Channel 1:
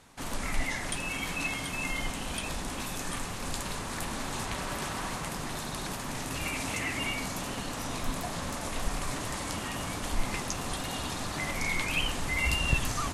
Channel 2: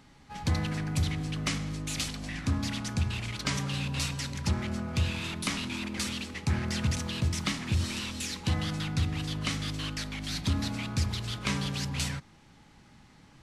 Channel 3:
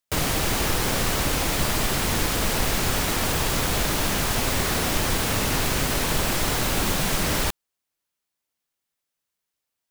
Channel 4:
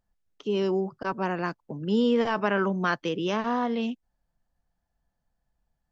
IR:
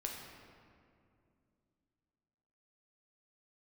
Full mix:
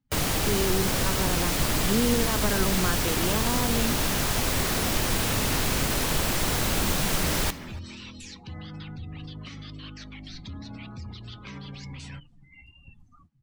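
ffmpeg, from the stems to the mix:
-filter_complex "[0:a]flanger=delay=9.9:depth=2.8:regen=-20:speed=0.49:shape=sinusoidal,adelay=150,volume=0.112[s0];[1:a]alimiter=level_in=1.33:limit=0.0631:level=0:latency=1:release=30,volume=0.75,volume=0.596,asplit=2[s1][s2];[s2]volume=0.141[s3];[2:a]volume=0.841,asplit=2[s4][s5];[s5]volume=0.133[s6];[3:a]volume=0.891[s7];[s3][s6]amix=inputs=2:normalize=0,aecho=0:1:287:1[s8];[s0][s1][s4][s7][s8]amix=inputs=5:normalize=0,afftdn=nr=28:nf=-47,acrossover=split=330|3000[s9][s10][s11];[s10]acompressor=threshold=0.0316:ratio=2[s12];[s9][s12][s11]amix=inputs=3:normalize=0"

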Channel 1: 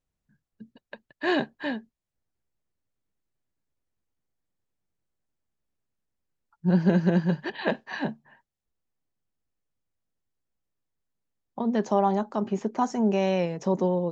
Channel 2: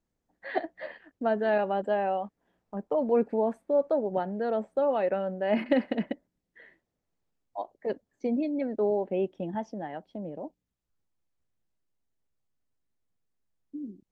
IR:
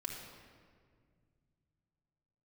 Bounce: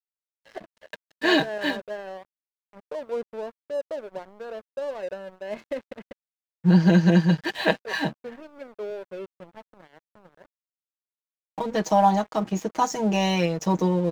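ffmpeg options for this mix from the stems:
-filter_complex "[0:a]highshelf=f=2700:g=10.5,aecho=1:1:6.3:0.89,volume=1.12[s0];[1:a]aecho=1:1:1.9:0.51,volume=0.473[s1];[s0][s1]amix=inputs=2:normalize=0,aeval=exprs='sgn(val(0))*max(abs(val(0))-0.00841,0)':c=same"

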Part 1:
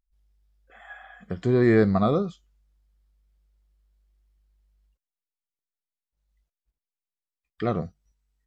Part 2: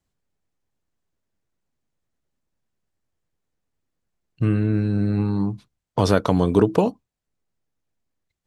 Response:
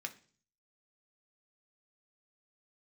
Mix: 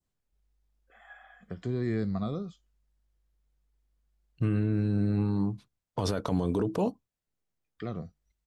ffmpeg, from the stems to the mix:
-filter_complex "[0:a]acrossover=split=270|3000[s0][s1][s2];[s1]acompressor=threshold=0.0251:ratio=3[s3];[s0][s3][s2]amix=inputs=3:normalize=0,adelay=200,volume=0.422[s4];[1:a]adynamicequalizer=threshold=0.0141:dfrequency=2000:dqfactor=0.72:tfrequency=2000:tqfactor=0.72:attack=5:release=100:ratio=0.375:range=2.5:mode=cutabove:tftype=bell,volume=0.531[s5];[s4][s5]amix=inputs=2:normalize=0,alimiter=limit=0.112:level=0:latency=1:release=18"

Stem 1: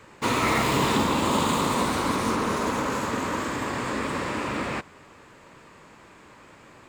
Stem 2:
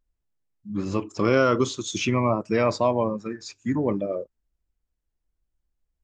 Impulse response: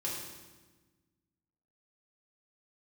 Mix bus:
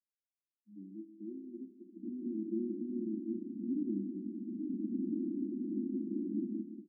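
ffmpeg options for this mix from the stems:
-filter_complex "[0:a]acompressor=threshold=0.0316:ratio=6,adelay=1800,volume=1.26,asplit=2[s0][s1];[s1]volume=0.398[s2];[1:a]volume=0.316,afade=t=in:st=2.07:d=0.3:silence=0.281838,asplit=3[s3][s4][s5];[s4]volume=0.299[s6];[s5]apad=whole_len=382961[s7];[s0][s7]sidechaincompress=threshold=0.00316:ratio=8:attack=16:release=485[s8];[2:a]atrim=start_sample=2205[s9];[s6][s9]afir=irnorm=-1:irlink=0[s10];[s2]aecho=0:1:186:1[s11];[s8][s3][s10][s11]amix=inputs=4:normalize=0,asuperpass=centerf=260:order=20:qfactor=1.5"

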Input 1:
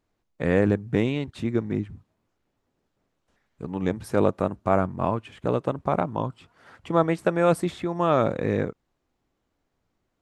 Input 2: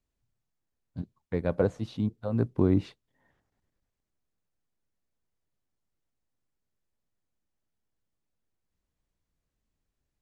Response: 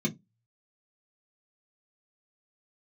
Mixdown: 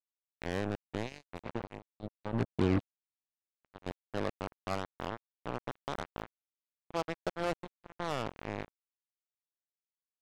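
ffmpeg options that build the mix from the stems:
-filter_complex "[0:a]aeval=exprs='val(0)+0.0158*(sin(2*PI*50*n/s)+sin(2*PI*2*50*n/s)/2+sin(2*PI*3*50*n/s)/3+sin(2*PI*4*50*n/s)/4+sin(2*PI*5*50*n/s)/5)':c=same,highpass=f=85:p=1,volume=0.211,asplit=2[s0][s1];[1:a]volume=0.891[s2];[s1]apad=whole_len=450601[s3];[s2][s3]sidechaincompress=threshold=0.002:ratio=3:attack=16:release=558[s4];[s0][s4]amix=inputs=2:normalize=0,acrusher=bits=4:mix=0:aa=0.5"

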